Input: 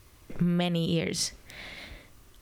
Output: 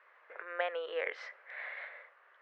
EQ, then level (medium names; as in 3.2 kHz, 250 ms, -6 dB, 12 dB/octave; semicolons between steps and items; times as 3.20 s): elliptic high-pass 500 Hz, stop band 60 dB; four-pole ladder low-pass 2 kHz, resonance 55%; +8.5 dB